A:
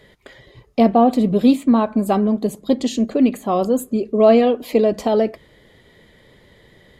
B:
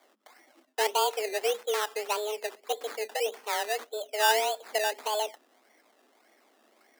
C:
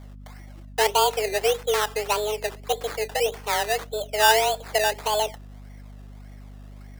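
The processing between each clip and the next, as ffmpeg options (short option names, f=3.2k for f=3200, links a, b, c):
-af "acrusher=samples=17:mix=1:aa=0.000001:lfo=1:lforange=10.2:lforate=1.7,afreqshift=210,equalizer=f=220:t=o:w=3:g=-10,volume=-9dB"
-af "aeval=exprs='val(0)+0.00447*(sin(2*PI*50*n/s)+sin(2*PI*2*50*n/s)/2+sin(2*PI*3*50*n/s)/3+sin(2*PI*4*50*n/s)/4+sin(2*PI*5*50*n/s)/5)':c=same,volume=6dB"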